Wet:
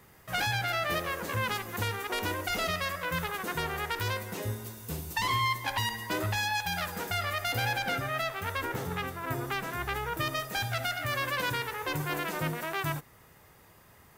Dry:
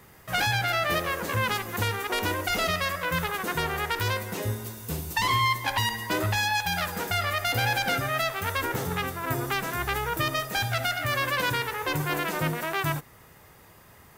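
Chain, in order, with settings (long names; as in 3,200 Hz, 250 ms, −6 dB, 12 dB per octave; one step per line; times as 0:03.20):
0:07.72–0:10.20: bass and treble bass 0 dB, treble −4 dB
level −4.5 dB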